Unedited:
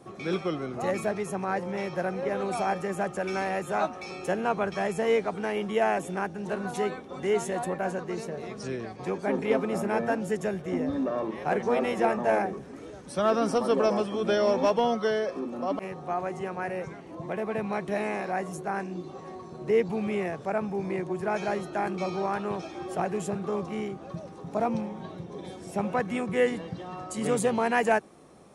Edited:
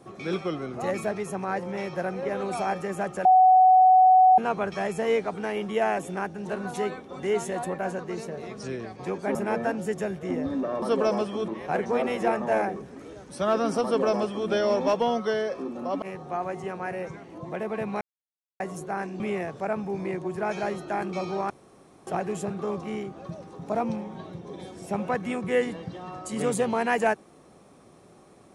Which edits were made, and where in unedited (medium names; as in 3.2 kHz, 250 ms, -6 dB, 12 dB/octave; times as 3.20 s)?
3.25–4.38 s: bleep 746 Hz -12.5 dBFS
9.35–9.78 s: delete
13.61–14.27 s: copy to 11.25 s
17.78–18.37 s: mute
18.97–20.05 s: delete
22.35–22.92 s: room tone